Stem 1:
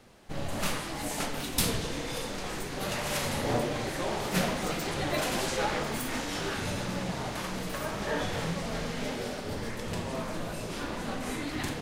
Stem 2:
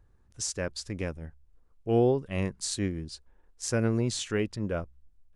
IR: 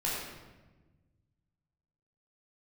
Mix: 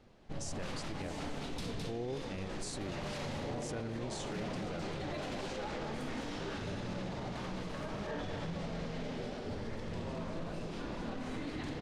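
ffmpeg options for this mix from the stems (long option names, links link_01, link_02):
-filter_complex "[0:a]lowpass=4200,equalizer=frequency=1800:width=0.47:gain=-5.5,volume=-4dB,asplit=2[link_01][link_02];[link_02]volume=-6.5dB[link_03];[1:a]volume=-8dB[link_04];[link_03]aecho=0:1:212:1[link_05];[link_01][link_04][link_05]amix=inputs=3:normalize=0,alimiter=level_in=7dB:limit=-24dB:level=0:latency=1:release=32,volume=-7dB"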